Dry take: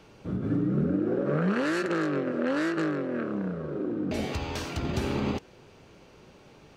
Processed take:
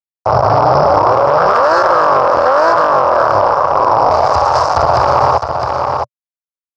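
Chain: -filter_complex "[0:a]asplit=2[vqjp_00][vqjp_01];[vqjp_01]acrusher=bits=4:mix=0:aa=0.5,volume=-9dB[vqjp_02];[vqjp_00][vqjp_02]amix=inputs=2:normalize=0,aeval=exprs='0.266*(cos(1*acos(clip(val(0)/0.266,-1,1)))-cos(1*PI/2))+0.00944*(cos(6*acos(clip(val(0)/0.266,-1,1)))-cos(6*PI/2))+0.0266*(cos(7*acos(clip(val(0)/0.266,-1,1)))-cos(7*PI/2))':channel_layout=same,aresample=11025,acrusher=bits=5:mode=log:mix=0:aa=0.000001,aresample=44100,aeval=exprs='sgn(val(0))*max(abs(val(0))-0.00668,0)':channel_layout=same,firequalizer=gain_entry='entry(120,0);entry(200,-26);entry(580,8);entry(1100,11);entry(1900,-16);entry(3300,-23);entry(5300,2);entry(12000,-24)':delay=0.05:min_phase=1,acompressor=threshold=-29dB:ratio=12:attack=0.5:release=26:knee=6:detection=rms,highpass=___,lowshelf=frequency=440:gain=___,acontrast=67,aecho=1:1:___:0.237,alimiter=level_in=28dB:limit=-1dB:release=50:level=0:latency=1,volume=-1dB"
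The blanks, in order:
82, -5, 660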